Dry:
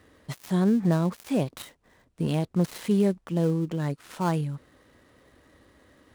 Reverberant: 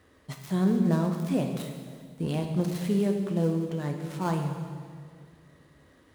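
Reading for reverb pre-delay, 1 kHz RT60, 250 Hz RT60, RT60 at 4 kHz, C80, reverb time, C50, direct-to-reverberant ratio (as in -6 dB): 8 ms, 1.8 s, 2.3 s, 1.7 s, 6.5 dB, 1.9 s, 5.5 dB, 3.0 dB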